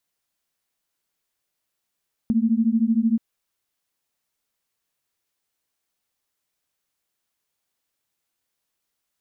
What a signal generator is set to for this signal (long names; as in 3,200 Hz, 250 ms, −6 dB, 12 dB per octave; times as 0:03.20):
held notes A3/A#3 sine, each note −20 dBFS 0.88 s